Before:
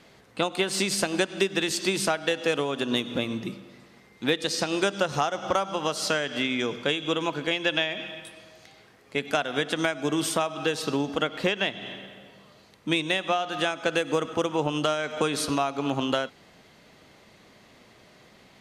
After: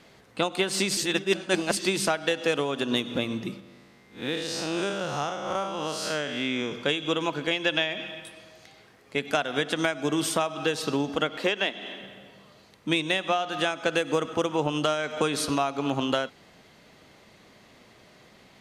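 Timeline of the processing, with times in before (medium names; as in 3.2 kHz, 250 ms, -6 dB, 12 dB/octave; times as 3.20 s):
0.97–1.77 s: reverse
3.60–6.72 s: spectral blur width 133 ms
11.38–12.01 s: high-pass 220 Hz 24 dB/octave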